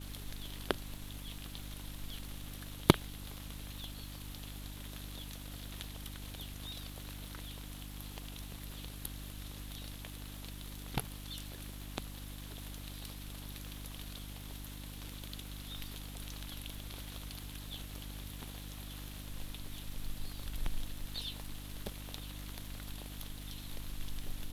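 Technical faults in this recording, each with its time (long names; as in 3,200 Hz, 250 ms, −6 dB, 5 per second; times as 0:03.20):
surface crackle 540 per second −47 dBFS
mains hum 50 Hz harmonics 6 −47 dBFS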